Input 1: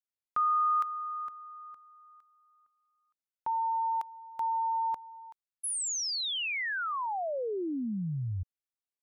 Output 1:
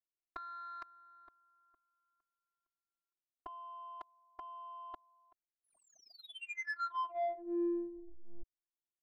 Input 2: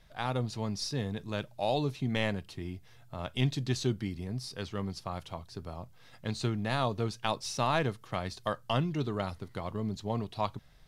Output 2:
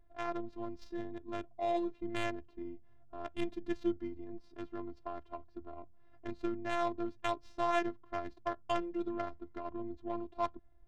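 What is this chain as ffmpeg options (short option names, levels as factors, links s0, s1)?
-af "afftfilt=real='hypot(re,im)*cos(PI*b)':imag='0':win_size=512:overlap=0.75,adynamicsmooth=sensitivity=3:basefreq=800,volume=1.12"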